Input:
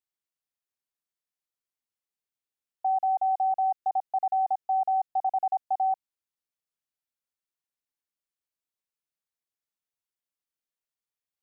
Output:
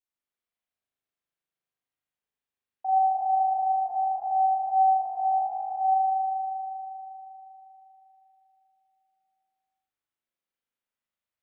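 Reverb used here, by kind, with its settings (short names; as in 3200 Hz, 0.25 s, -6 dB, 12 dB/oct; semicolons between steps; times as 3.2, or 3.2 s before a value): spring tank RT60 3.6 s, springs 39 ms, chirp 55 ms, DRR -9 dB; gain -6 dB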